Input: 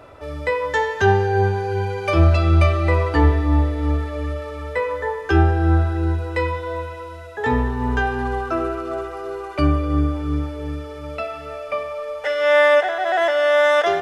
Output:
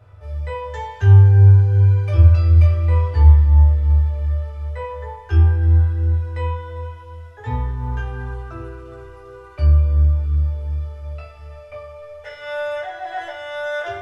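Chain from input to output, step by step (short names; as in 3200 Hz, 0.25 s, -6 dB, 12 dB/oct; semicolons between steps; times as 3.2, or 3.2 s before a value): resonant low shelf 150 Hz +12 dB, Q 3; reverb RT60 0.35 s, pre-delay 4 ms, DRR -3 dB; gain -14.5 dB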